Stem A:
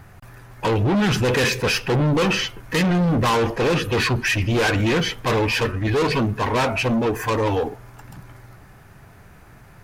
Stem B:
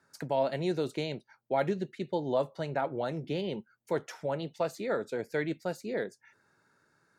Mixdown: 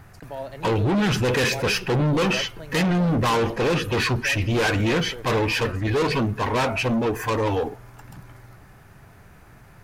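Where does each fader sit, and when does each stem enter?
-2.0 dB, -5.5 dB; 0.00 s, 0.00 s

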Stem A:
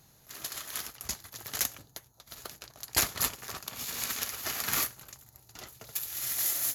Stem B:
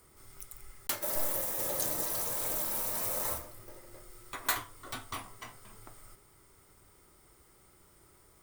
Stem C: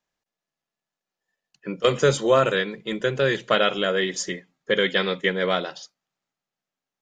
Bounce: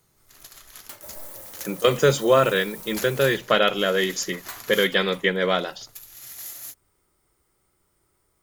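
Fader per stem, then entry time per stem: -7.5 dB, -7.5 dB, +1.0 dB; 0.00 s, 0.00 s, 0.00 s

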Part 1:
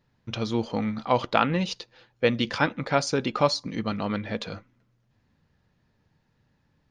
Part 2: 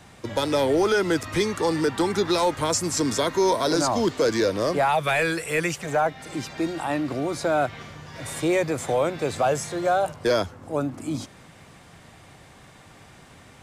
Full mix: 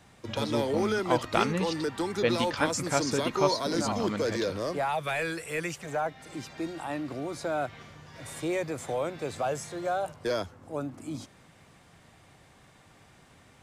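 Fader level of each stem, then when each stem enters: -4.5 dB, -8.0 dB; 0.00 s, 0.00 s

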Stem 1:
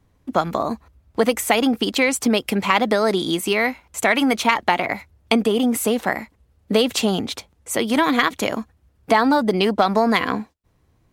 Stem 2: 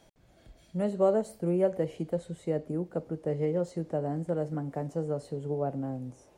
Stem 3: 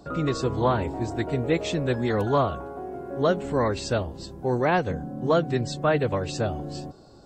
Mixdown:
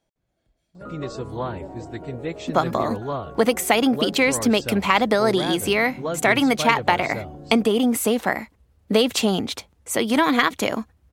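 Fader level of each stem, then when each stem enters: -0.5 dB, -14.5 dB, -6.0 dB; 2.20 s, 0.00 s, 0.75 s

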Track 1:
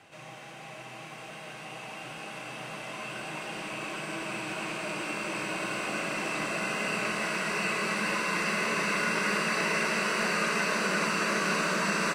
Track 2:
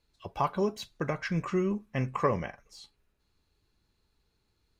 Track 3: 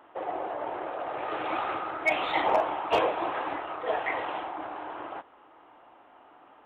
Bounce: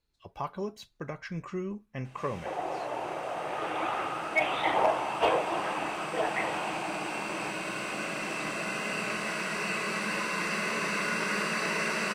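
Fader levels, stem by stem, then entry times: -2.0 dB, -6.5 dB, -1.0 dB; 2.05 s, 0.00 s, 2.30 s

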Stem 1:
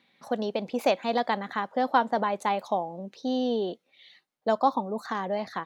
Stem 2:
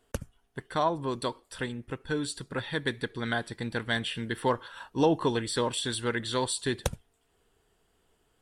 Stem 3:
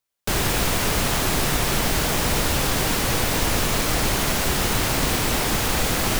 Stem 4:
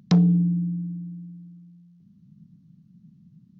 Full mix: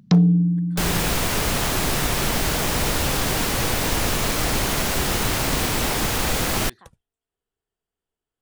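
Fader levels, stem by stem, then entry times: -19.0 dB, -19.0 dB, -0.5 dB, +2.5 dB; 1.25 s, 0.00 s, 0.50 s, 0.00 s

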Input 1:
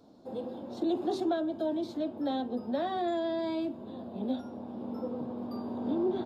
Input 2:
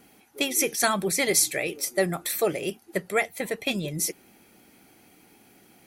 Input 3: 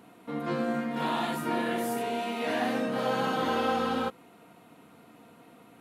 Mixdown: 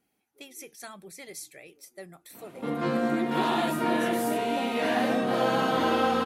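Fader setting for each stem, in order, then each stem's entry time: -3.0 dB, -20.0 dB, +3.0 dB; 2.30 s, 0.00 s, 2.35 s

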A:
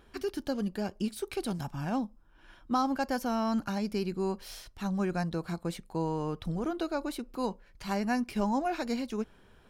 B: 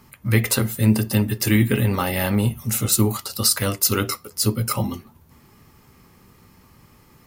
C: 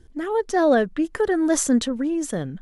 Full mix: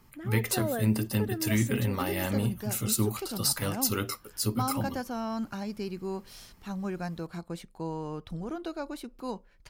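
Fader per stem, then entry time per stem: -3.5 dB, -9.0 dB, -15.0 dB; 1.85 s, 0.00 s, 0.00 s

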